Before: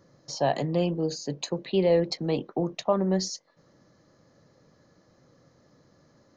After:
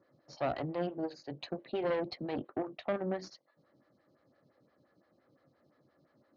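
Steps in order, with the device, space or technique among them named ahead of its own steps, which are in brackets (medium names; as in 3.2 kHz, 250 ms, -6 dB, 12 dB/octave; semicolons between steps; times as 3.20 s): vibe pedal into a guitar amplifier (lamp-driven phase shifter 5.8 Hz; valve stage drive 24 dB, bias 0.7; cabinet simulation 85–4200 Hz, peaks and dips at 180 Hz -5 dB, 460 Hz -6 dB, 970 Hz -5 dB)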